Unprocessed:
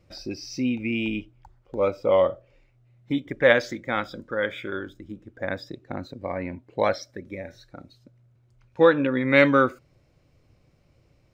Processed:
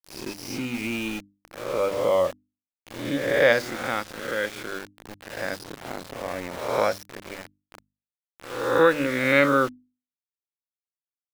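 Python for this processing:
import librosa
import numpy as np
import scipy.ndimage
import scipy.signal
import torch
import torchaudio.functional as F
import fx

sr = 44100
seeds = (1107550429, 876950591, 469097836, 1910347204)

y = fx.spec_swells(x, sr, rise_s=1.05)
y = np.where(np.abs(y) >= 10.0 ** (-29.5 / 20.0), y, 0.0)
y = fx.hum_notches(y, sr, base_hz=50, count=6)
y = F.gain(torch.from_numpy(y), -3.0).numpy()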